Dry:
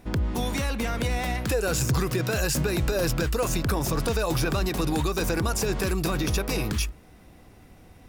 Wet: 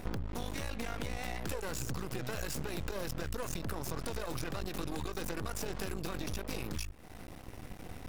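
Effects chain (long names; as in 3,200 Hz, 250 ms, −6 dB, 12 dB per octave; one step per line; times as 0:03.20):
half-wave rectification
downward compressor 8 to 1, threshold −41 dBFS, peak gain reduction 19 dB
level +7.5 dB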